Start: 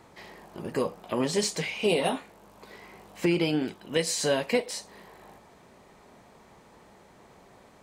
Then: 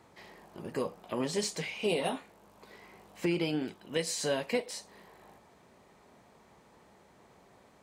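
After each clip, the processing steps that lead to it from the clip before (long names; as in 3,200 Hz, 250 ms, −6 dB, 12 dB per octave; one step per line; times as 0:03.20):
high-pass filter 42 Hz
level −5.5 dB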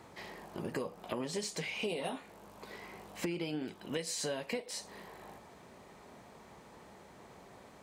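downward compressor 5 to 1, threshold −40 dBFS, peak gain reduction 13.5 dB
level +5 dB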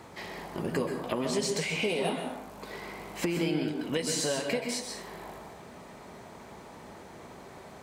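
dense smooth reverb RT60 0.7 s, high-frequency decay 0.6×, pre-delay 115 ms, DRR 4 dB
level +6 dB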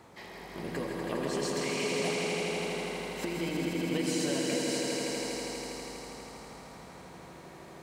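echo that builds up and dies away 81 ms, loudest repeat 5, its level −5.5 dB
level −6 dB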